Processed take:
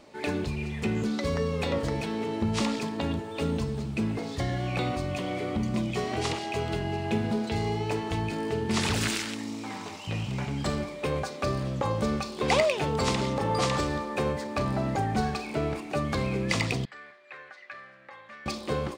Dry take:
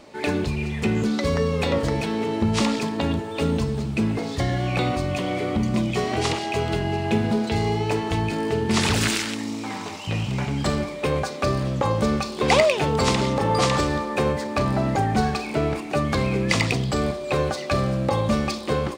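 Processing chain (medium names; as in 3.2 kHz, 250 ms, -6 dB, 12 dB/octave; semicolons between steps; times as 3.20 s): 16.85–18.46 s: band-pass filter 1.8 kHz, Q 4.5; trim -6 dB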